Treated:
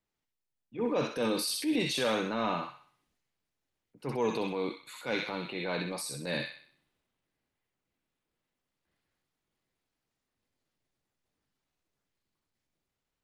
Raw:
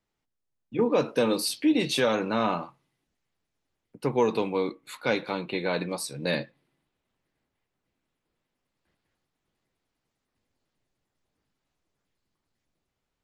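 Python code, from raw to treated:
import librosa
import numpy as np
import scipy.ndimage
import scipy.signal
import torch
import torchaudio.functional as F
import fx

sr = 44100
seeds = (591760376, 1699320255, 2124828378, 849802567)

y = fx.echo_wet_highpass(x, sr, ms=63, feedback_pct=43, hz=1600.0, wet_db=-3.0)
y = fx.transient(y, sr, attack_db=-7, sustain_db=4)
y = F.gain(torch.from_numpy(y), -5.0).numpy()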